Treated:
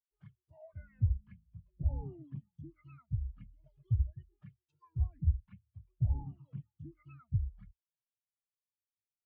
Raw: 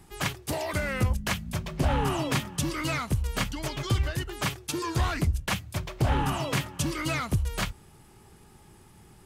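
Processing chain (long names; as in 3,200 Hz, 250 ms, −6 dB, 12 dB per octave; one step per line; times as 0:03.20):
flanger swept by the level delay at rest 11.4 ms, full sweep at −22.5 dBFS
treble cut that deepens with the level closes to 2,300 Hz, closed at −23 dBFS
every bin expanded away from the loudest bin 2.5 to 1
level −2.5 dB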